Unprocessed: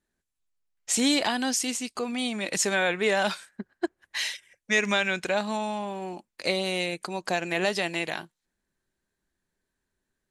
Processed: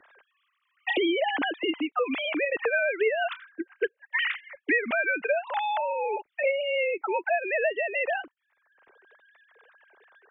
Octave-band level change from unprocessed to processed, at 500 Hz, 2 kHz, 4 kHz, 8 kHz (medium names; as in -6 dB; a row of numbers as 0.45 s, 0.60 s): +3.0 dB, +2.0 dB, -5.5 dB, under -40 dB